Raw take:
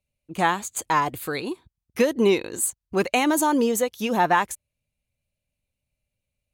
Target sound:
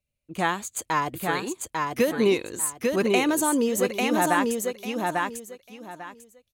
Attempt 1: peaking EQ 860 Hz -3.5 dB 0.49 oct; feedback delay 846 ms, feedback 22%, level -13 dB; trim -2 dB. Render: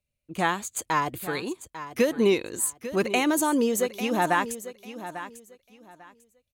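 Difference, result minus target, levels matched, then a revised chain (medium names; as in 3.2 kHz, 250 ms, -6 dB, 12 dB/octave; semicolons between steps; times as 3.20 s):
echo-to-direct -10 dB
peaking EQ 860 Hz -3.5 dB 0.49 oct; feedback delay 846 ms, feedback 22%, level -3 dB; trim -2 dB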